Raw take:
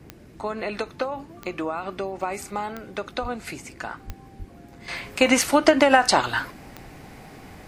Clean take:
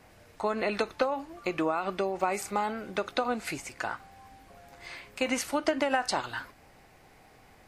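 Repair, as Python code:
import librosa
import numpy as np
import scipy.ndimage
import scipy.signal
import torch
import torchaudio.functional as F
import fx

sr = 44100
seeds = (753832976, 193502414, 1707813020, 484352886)

y = fx.fix_declick_ar(x, sr, threshold=10.0)
y = fx.highpass(y, sr, hz=140.0, slope=24, at=(3.21, 3.33), fade=0.02)
y = fx.highpass(y, sr, hz=140.0, slope=24, at=(4.06, 4.18), fade=0.02)
y = fx.highpass(y, sr, hz=140.0, slope=24, at=(4.38, 4.5), fade=0.02)
y = fx.noise_reduce(y, sr, print_start_s=4.29, print_end_s=4.79, reduce_db=10.0)
y = fx.fix_level(y, sr, at_s=4.88, step_db=-11.0)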